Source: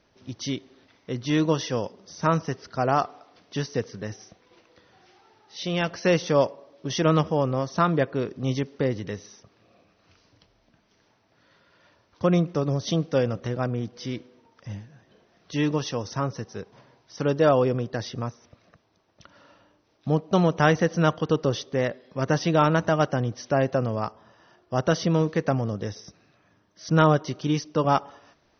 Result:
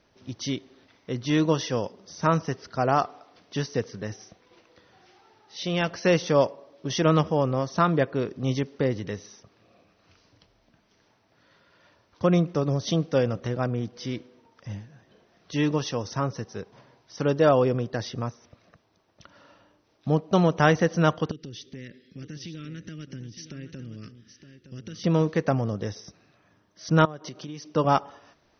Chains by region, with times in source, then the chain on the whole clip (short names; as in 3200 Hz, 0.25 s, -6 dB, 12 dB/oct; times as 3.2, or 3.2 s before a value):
21.31–25.04 Chebyshev band-stop 310–2200 Hz + compressor 5:1, threshold -37 dBFS + echo 0.915 s -11 dB
27.05–27.74 compressor 12:1, threshold -33 dBFS + HPF 120 Hz
whole clip: dry